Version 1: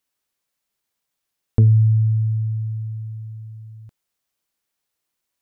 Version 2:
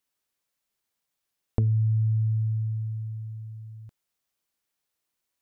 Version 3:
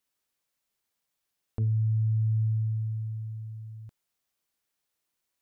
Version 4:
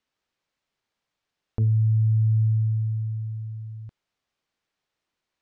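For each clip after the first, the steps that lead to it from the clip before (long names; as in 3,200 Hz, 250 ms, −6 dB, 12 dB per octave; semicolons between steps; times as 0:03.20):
downward compressor, threshold −18 dBFS, peak gain reduction 8 dB; level −3 dB
brickwall limiter −22 dBFS, peak gain reduction 11 dB
high-frequency loss of the air 130 metres; level +5.5 dB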